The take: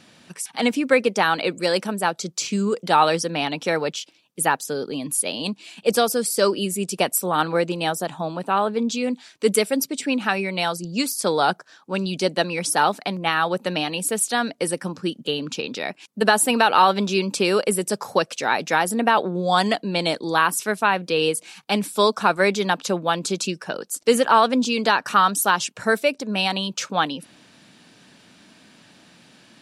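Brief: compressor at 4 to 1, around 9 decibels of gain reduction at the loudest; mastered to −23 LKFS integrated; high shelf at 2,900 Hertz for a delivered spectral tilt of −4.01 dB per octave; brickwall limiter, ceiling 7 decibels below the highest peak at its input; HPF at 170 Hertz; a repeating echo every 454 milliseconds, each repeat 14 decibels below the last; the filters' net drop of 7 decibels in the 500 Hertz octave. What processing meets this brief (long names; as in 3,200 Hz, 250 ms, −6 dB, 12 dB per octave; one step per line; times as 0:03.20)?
high-pass filter 170 Hz
parametric band 500 Hz −8.5 dB
high-shelf EQ 2,900 Hz −3.5 dB
downward compressor 4 to 1, threshold −24 dBFS
brickwall limiter −17.5 dBFS
repeating echo 454 ms, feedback 20%, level −14 dB
level +7 dB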